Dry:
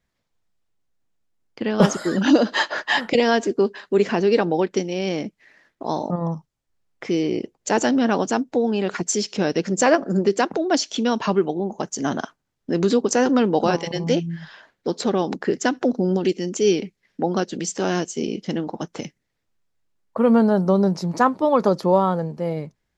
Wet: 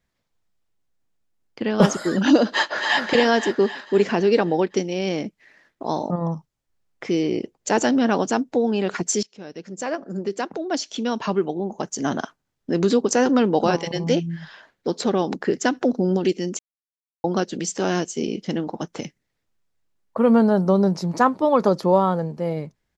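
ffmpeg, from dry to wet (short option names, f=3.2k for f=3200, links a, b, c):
-filter_complex "[0:a]asplit=2[a][b];[b]afade=t=in:st=2.5:d=0.01,afade=t=out:st=3.02:d=0.01,aecho=0:1:260|520|780|1040|1300|1560|1820:0.562341|0.309288|0.170108|0.0935595|0.0514577|0.0283018|0.015566[c];[a][c]amix=inputs=2:normalize=0,asplit=4[d][e][f][g];[d]atrim=end=9.23,asetpts=PTS-STARTPTS,afade=t=out:st=9.226:d=0.004:c=hsin:silence=0.0794328[h];[e]atrim=start=9.23:end=16.59,asetpts=PTS-STARTPTS,afade=t=in:d=2.91:silence=0.0794328,afade=t=out:st=7.356:d=0.004:c=hsin[i];[f]atrim=start=16.59:end=17.24,asetpts=PTS-STARTPTS,volume=0[j];[g]atrim=start=17.24,asetpts=PTS-STARTPTS,afade=t=in:d=0.004:c=hsin[k];[h][i][j][k]concat=n=4:v=0:a=1"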